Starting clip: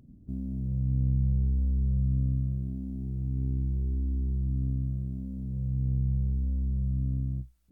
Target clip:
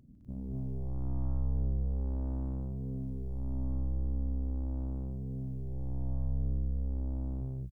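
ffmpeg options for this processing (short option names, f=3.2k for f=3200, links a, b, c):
-af "aeval=exprs='0.141*(cos(1*acos(clip(val(0)/0.141,-1,1)))-cos(1*PI/2))+0.0158*(cos(6*acos(clip(val(0)/0.141,-1,1)))-cos(6*PI/2))':c=same,asoftclip=type=tanh:threshold=-26.5dB,aecho=1:1:151.6|209.9|247.8:0.251|0.501|1,volume=-4.5dB"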